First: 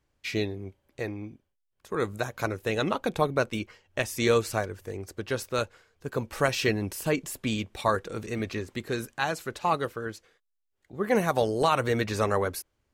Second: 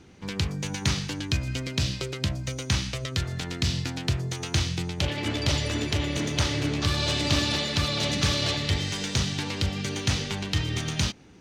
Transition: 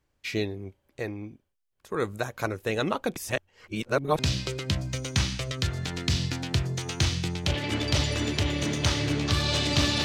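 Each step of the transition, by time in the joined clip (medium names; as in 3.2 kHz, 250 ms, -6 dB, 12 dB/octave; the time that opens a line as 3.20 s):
first
3.16–4.19 s: reverse
4.19 s: go over to second from 1.73 s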